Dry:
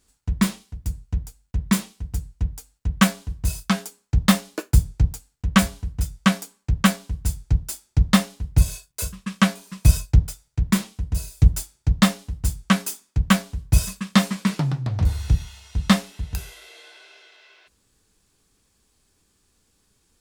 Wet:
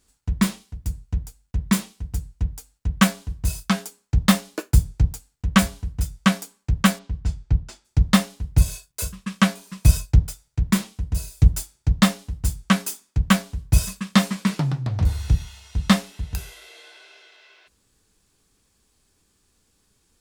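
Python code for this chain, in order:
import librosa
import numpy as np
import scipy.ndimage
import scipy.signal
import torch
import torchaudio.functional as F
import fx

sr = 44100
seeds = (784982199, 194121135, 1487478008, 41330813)

y = fx.air_absorb(x, sr, metres=140.0, at=(6.98, 7.84), fade=0.02)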